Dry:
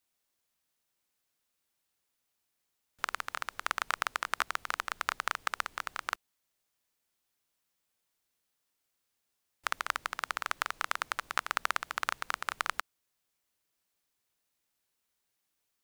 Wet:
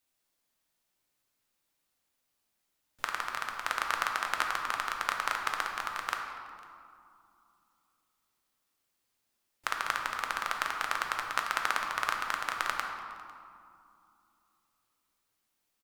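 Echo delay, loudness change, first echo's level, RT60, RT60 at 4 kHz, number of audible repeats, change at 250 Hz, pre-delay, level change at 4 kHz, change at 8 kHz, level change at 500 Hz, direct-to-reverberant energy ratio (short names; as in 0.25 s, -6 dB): 0.501 s, +2.0 dB, -23.0 dB, 2.5 s, 1.4 s, 1, +4.0 dB, 3 ms, +1.5 dB, +1.0 dB, +2.5 dB, 1.5 dB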